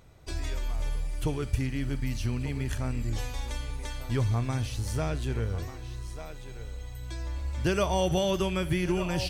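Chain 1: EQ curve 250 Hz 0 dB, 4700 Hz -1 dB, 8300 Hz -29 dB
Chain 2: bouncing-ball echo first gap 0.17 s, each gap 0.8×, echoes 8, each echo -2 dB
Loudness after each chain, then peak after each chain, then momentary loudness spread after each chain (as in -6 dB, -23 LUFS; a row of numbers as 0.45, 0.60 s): -31.5, -27.5 LUFS; -13.5, -8.5 dBFS; 14, 14 LU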